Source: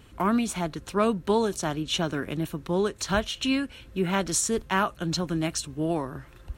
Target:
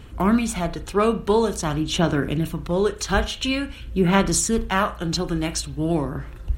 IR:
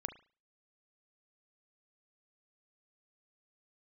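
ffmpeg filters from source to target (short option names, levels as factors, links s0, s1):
-filter_complex "[0:a]aphaser=in_gain=1:out_gain=1:delay=2.5:decay=0.36:speed=0.48:type=sinusoidal,asplit=2[s0][s1];[1:a]atrim=start_sample=2205,lowshelf=f=93:g=11[s2];[s1][s2]afir=irnorm=-1:irlink=0,volume=2.37[s3];[s0][s3]amix=inputs=2:normalize=0,volume=0.501"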